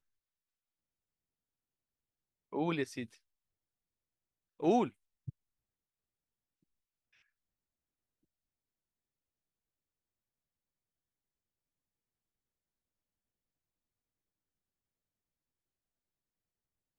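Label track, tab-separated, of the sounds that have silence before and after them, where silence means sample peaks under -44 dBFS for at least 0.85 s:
2.530000	3.050000	sound
4.600000	5.300000	sound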